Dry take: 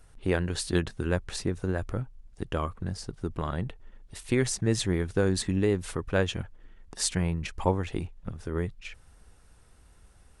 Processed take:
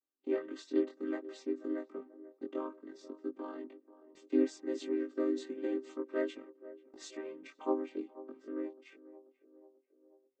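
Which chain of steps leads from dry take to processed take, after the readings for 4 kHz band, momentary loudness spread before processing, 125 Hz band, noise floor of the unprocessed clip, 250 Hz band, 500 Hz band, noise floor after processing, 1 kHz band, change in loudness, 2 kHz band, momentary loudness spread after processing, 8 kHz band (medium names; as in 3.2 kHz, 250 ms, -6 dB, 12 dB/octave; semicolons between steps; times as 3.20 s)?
-18.0 dB, 13 LU, under -40 dB, -56 dBFS, -5.0 dB, -5.5 dB, -75 dBFS, -11.0 dB, -8.0 dB, -15.0 dB, 17 LU, -22.5 dB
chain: vocoder on a held chord minor triad, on C4; gate -55 dBFS, range -25 dB; chorus 0.58 Hz, delay 19.5 ms, depth 3.3 ms; band-passed feedback delay 487 ms, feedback 62%, band-pass 520 Hz, level -16 dB; trim -4 dB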